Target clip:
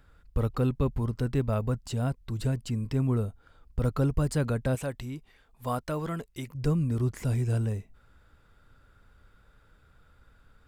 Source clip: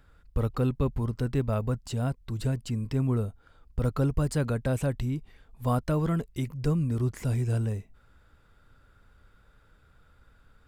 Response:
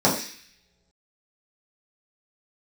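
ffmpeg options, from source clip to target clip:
-filter_complex "[0:a]asettb=1/sr,asplit=3[a][b][c];[a]atrim=end=4.754[d];[b]atrim=start=4.75:end=6.55,asetpts=PTS-STARTPTS,afade=t=in:d=0.004:c=qsin,afade=t=out:st=1.796:d=0.004:c=qsin,lowshelf=f=310:g=-10[e];[c]atrim=start=6.546[f];[d][e]acrossfade=d=0.004:c1=hsin:c2=qsin[g];[g][f]acrossfade=d=0.004:c1=qsin:c2=hsin"

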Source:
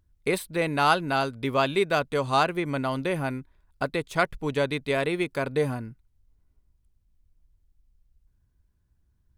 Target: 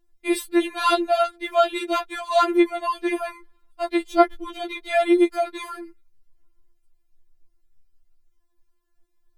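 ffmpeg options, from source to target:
-filter_complex "[0:a]asettb=1/sr,asplit=3[a][b][c];[a]atrim=end=4.114[d];[b]atrim=start=4.11:end=4.81,asetpts=PTS-STARTPTS,afade=t=in:d=0.004:c=qsin,afade=t=out:st=0.696:d=0.004:c=qsin,equalizer=f=250:t=o:w=1:g=10,equalizer=f=2k:t=o:w=1:g=-4,equalizer=f=8k:t=o:w=1:g=-8[e];[c]atrim=start=4.806[f];[d][e]acrossfade=d=0.004:c1=hsin:c2=qsin[g];[g][f]acrossfade=d=0.004:c1=qsin:c2=hsin,afftfilt=real='re*4*eq(mod(b,16),0)':imag='im*4*eq(mod(b,16),0)':win_size=2048:overlap=0.75,volume=5.5dB"

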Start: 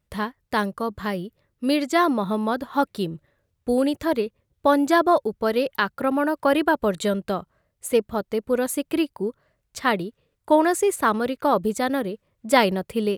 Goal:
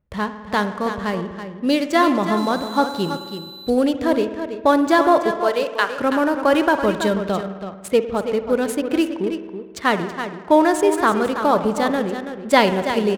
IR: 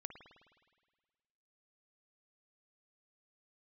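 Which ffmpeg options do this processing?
-filter_complex "[0:a]asettb=1/sr,asplit=3[a][b][c];[a]atrim=end=5.314[d];[b]atrim=start=5.31:end=5.94,asetpts=PTS-STARTPTS,afade=t=in:d=0.004:c=qsin,afade=t=out:st=0.626:d=0.004:c=qsin,highpass=450[e];[c]atrim=start=5.936[f];[d][e]acrossfade=d=0.004:c1=hsin:c2=qsin[g];[g][f]acrossfade=d=0.004:c1=qsin:c2=hsin,aecho=1:1:328:0.335,asettb=1/sr,asplit=3[h][i][j];[h]atrim=end=2.374[k];[i]atrim=start=2.37:end=3.7,asetpts=PTS-STARTPTS,afade=t=in:d=0.004:c=qsin,afade=t=out:st=1.326:d=0.004:c=qsin,aeval=exprs='val(0)+0.0158*sin(2*PI*4000*n/s)':c=same[l];[j]atrim=start=3.696[m];[k][l]acrossfade=d=0.004:c1=hsin:c2=qsin[n];[n][m]acrossfade=d=0.004:c1=qsin:c2=hsin,asplit=2[o][p];[1:a]atrim=start_sample=2205[q];[p][q]afir=irnorm=-1:irlink=0,volume=9.5dB[r];[o][r]amix=inputs=2:normalize=0,adynamicsmooth=sensitivity=5.5:basefreq=1.6k,volume=-5.5dB"

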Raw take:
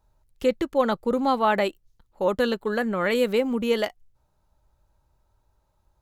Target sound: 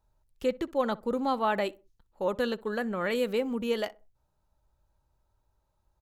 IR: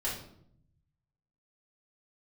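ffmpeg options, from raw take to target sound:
-filter_complex "[0:a]bandreject=f=2.1k:w=27,asplit=2[a][b];[b]adelay=63,lowpass=f=1.2k:p=1,volume=-20dB,asplit=2[c][d];[d]adelay=63,lowpass=f=1.2k:p=1,volume=0.33,asplit=2[e][f];[f]adelay=63,lowpass=f=1.2k:p=1,volume=0.33[g];[a][c][e][g]amix=inputs=4:normalize=0,volume=-6dB"

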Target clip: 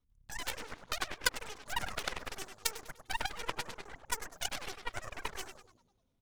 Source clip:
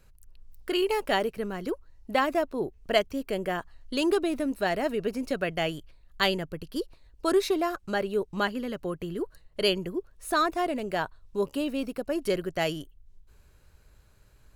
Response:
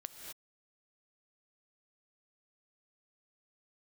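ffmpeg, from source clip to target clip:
-filter_complex "[0:a]highshelf=f=5.7k:g=-8.5,asetrate=103194,aresample=44100,aecho=1:1:4.1:0.37,asplit=8[a][b][c][d][e][f][g][h];[b]adelay=100,afreqshift=-140,volume=-6dB[i];[c]adelay=200,afreqshift=-280,volume=-11.4dB[j];[d]adelay=300,afreqshift=-420,volume=-16.7dB[k];[e]adelay=400,afreqshift=-560,volume=-22.1dB[l];[f]adelay=500,afreqshift=-700,volume=-27.4dB[m];[g]adelay=600,afreqshift=-840,volume=-32.8dB[n];[h]adelay=700,afreqshift=-980,volume=-38.1dB[o];[a][i][j][k][l][m][n][o]amix=inputs=8:normalize=0,aeval=exprs='0.335*(cos(1*acos(clip(val(0)/0.335,-1,1)))-cos(1*PI/2))+0.119*(cos(3*acos(clip(val(0)/0.335,-1,1)))-cos(3*PI/2))+0.0237*(cos(4*acos(clip(val(0)/0.335,-1,1)))-cos(4*PI/2))+0.0299*(cos(6*acos(clip(val(0)/0.335,-1,1)))-cos(6*PI/2))':c=same,volume=1dB"

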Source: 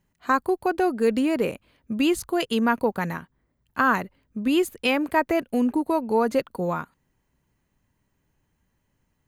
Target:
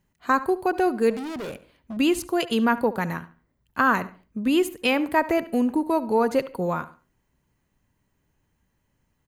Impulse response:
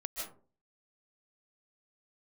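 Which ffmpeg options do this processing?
-filter_complex "[0:a]asettb=1/sr,asplit=3[a][b][c];[a]atrim=end=1.104[d];[b]atrim=start=1.1:end=1.97,asetpts=PTS-STARTPTS,afade=t=in:d=0.004:c=qsin,afade=t=out:st=0.866:d=0.004:c=qsin,volume=31.5dB,asoftclip=hard,volume=-31.5dB[e];[c]atrim=start=1.966[f];[d][e]acrossfade=d=0.004:c1=hsin:c2=qsin[g];[g][f]acrossfade=d=0.004:c1=qsin:c2=hsin,asplit=2[h][i];[i]adelay=71,lowpass=f=4k:p=1,volume=-16dB,asplit=2[j][k];[k]adelay=71,lowpass=f=4k:p=1,volume=0.32,asplit=2[l][m];[m]adelay=71,lowpass=f=4k:p=1,volume=0.32[n];[h][j][l][n]amix=inputs=4:normalize=0,asplit=2[o][p];[1:a]atrim=start_sample=2205,asetrate=70560,aresample=44100[q];[p][q]afir=irnorm=-1:irlink=0,volume=-18.5dB[r];[o][r]amix=inputs=2:normalize=0"

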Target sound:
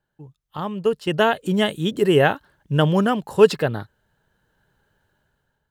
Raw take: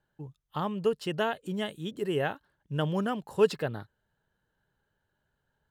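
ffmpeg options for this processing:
-filter_complex "[0:a]asettb=1/sr,asplit=3[a][b][c];[a]atrim=end=0.574[d];[b]atrim=start=0.57:end=1.28,asetpts=PTS-STARTPTS,afade=t=in:d=0.004:c=qsin,afade=t=out:st=0.706:d=0.004:c=qsin,agate=range=-7dB:threshold=-35dB:ratio=16:detection=peak[e];[c]atrim=start=1.276[f];[d][e]acrossfade=d=0.004:c1=hsin:c2=qsin[g];[g][f]acrossfade=d=0.004:c1=qsin:c2=hsin,dynaudnorm=f=420:g=5:m=15dB"

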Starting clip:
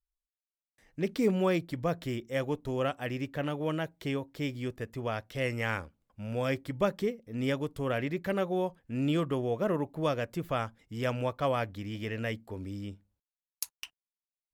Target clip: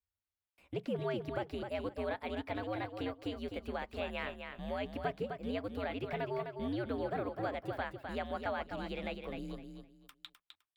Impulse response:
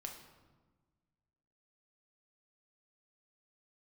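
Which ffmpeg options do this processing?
-filter_complex "[0:a]asetrate=59535,aresample=44100,equalizer=f=6.5k:w=4.4:g=-7,acrossover=split=3700[a][b];[b]acompressor=threshold=-53dB:ratio=4:attack=1:release=60[c];[a][c]amix=inputs=2:normalize=0,bass=f=250:g=-9,treble=f=4k:g=-6,acompressor=threshold=-41dB:ratio=2,aecho=1:1:256|512|768:0.473|0.109|0.025,afreqshift=-100,volume=1dB"

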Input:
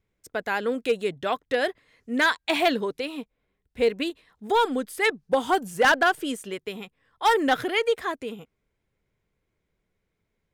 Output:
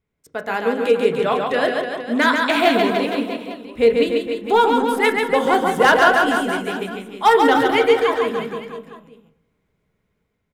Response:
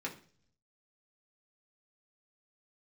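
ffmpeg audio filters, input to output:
-filter_complex "[0:a]dynaudnorm=f=140:g=7:m=6dB,aecho=1:1:140|294|463.4|649.7|854.7:0.631|0.398|0.251|0.158|0.1,asplit=2[a][b];[1:a]atrim=start_sample=2205,asetrate=24696,aresample=44100,lowpass=3.8k[c];[b][c]afir=irnorm=-1:irlink=0,volume=-7dB[d];[a][d]amix=inputs=2:normalize=0,volume=-4dB"

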